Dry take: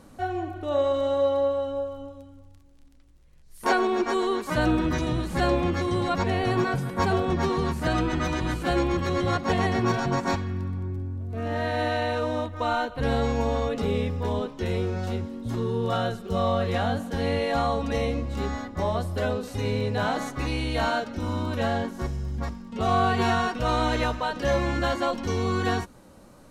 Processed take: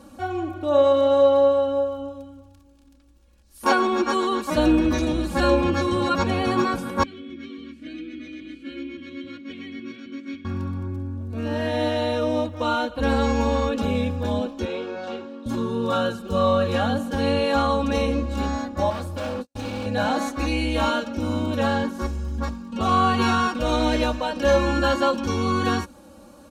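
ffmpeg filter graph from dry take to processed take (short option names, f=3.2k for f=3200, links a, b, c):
-filter_complex "[0:a]asettb=1/sr,asplit=3[a][b][c];[a]atrim=end=7.034[d];[b]atrim=start=7.03:end=10.45,asetpts=PTS-STARTPTS,afade=t=in:d=0.004:c=qsin,afade=t=out:st=3.416:d=0.004:c=qsin,asplit=3[e][f][g];[e]bandpass=f=270:t=q:w=8,volume=0dB[h];[f]bandpass=f=2.29k:t=q:w=8,volume=-6dB[i];[g]bandpass=f=3.01k:t=q:w=8,volume=-9dB[j];[h][i][j]amix=inputs=3:normalize=0,equalizer=f=230:t=o:w=0.84:g=-8[k];[c]atrim=start=10.446[l];[d][k]acrossfade=d=0.004:c1=hsin:c2=qsin[m];[m][l]acrossfade=d=0.004:c1=qsin:c2=hsin,asettb=1/sr,asplit=3[n][o][p];[n]atrim=end=14.654[q];[o]atrim=start=14.65:end=15.46,asetpts=PTS-STARTPTS,afade=t=in:d=0.004:c=qsin,afade=t=out:st=0.806:d=0.004:c=qsin,highpass=380,lowpass=3.9k,asplit=2[r][s];[s]adelay=50,volume=-11dB[t];[r][t]amix=inputs=2:normalize=0,atrim=end_sample=35721[u];[p]atrim=start=15.456[v];[q][u]acrossfade=d=0.004:c1=hsin:c2=qsin[w];[w][v]acrossfade=d=0.004:c1=qsin:c2=hsin,asettb=1/sr,asplit=3[x][y][z];[x]atrim=end=18.904[aa];[y]atrim=start=18.9:end=19.86,asetpts=PTS-STARTPTS,afade=t=in:d=0.004:c=qsin,afade=t=out:st=0.956:d=0.004:c=qsin,agate=range=-53dB:threshold=-32dB:ratio=16:release=100:detection=peak,asoftclip=type=hard:threshold=-30dB[ab];[z]atrim=start=19.856[ac];[aa][ab]acrossfade=d=0.004:c1=hsin:c2=qsin[ad];[ad][ac]acrossfade=d=0.004:c1=qsin:c2=hsin,highpass=51,bandreject=f=2k:w=6.9,aecho=1:1:3.6:0.86,volume=1.5dB"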